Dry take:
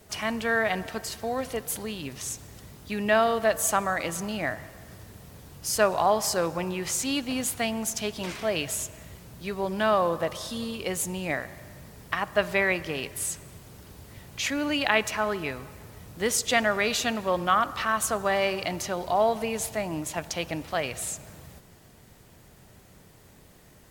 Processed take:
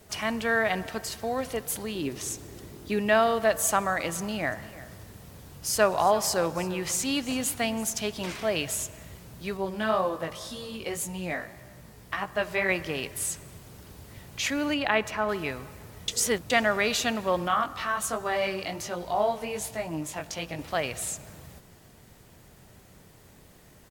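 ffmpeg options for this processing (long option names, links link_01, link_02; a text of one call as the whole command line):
ffmpeg -i in.wav -filter_complex "[0:a]asettb=1/sr,asplit=3[link_01][link_02][link_03];[link_01]atrim=end=1.954[link_04];[link_02]atrim=start=1.95:end=2.99,asetpts=PTS-STARTPTS,afade=type=in:duration=0.004:curve=qsin,afade=type=out:start_time=1.036:duration=0.004:curve=qsin,equalizer=frequency=350:width_type=o:width=0.77:gain=11.5[link_05];[link_03]atrim=start=2.986[link_06];[link_04][link_05]acrossfade=duration=0.004:curve1=hsin:curve2=qsin[link_07];[link_07][link_06]acrossfade=duration=0.004:curve1=qsin:curve2=hsin,asplit=3[link_08][link_09][link_10];[link_08]afade=type=out:start_time=4.51:duration=0.02[link_11];[link_09]aecho=1:1:337:0.133,afade=type=in:start_time=4.51:duration=0.02,afade=type=out:start_time=7.89:duration=0.02[link_12];[link_10]afade=type=in:start_time=7.89:duration=0.02[link_13];[link_11][link_12][link_13]amix=inputs=3:normalize=0,asettb=1/sr,asplit=3[link_14][link_15][link_16];[link_14]atrim=end=9.574[link_17];[link_15]atrim=start=9.57:end=12.69,asetpts=PTS-STARTPTS,afade=type=in:duration=0.004:curve=qsin,afade=type=out:start_time=3.116:duration=0.004:curve=qsin,flanger=delay=15:depth=4.1:speed=1.9[link_18];[link_16]atrim=start=12.686[link_19];[link_17][link_18]acrossfade=duration=0.004:curve1=hsin:curve2=qsin[link_20];[link_20][link_19]acrossfade=duration=0.004:curve1=qsin:curve2=hsin,asettb=1/sr,asplit=3[link_21][link_22][link_23];[link_21]atrim=end=14.744[link_24];[link_22]atrim=start=14.74:end=15.29,asetpts=PTS-STARTPTS,afade=type=in:duration=0.004:curve=qsin,afade=type=out:start_time=0.546:duration=0.004:curve=qsin,equalizer=frequency=11000:width_type=o:width=2.9:gain=-8.5[link_25];[link_23]atrim=start=15.286[link_26];[link_24][link_25]acrossfade=duration=0.004:curve1=hsin:curve2=qsin[link_27];[link_27][link_26]acrossfade=duration=0.004:curve1=qsin:curve2=hsin,asettb=1/sr,asplit=3[link_28][link_29][link_30];[link_28]atrim=end=17.484[link_31];[link_29]atrim=start=17.48:end=20.59,asetpts=PTS-STARTPTS,afade=type=in:duration=0.004:curve=qsin,afade=type=out:start_time=3.106:duration=0.004:curve=qsin,flanger=delay=17.5:depth=3.5:speed=1.3[link_32];[link_30]atrim=start=20.586[link_33];[link_31][link_32]acrossfade=duration=0.004:curve1=hsin:curve2=qsin[link_34];[link_34][link_33]acrossfade=duration=0.004:curve1=qsin:curve2=hsin,asplit=3[link_35][link_36][link_37];[link_35]atrim=end=16.082[link_38];[link_36]atrim=start=16.078:end=16.502,asetpts=PTS-STARTPTS,areverse[link_39];[link_37]atrim=start=16.498[link_40];[link_38][link_39]acrossfade=duration=0.004:curve1=hsin:curve2=hsin[link_41];[link_41][link_40]acrossfade=duration=0.004:curve1=hsin:curve2=hsin" out.wav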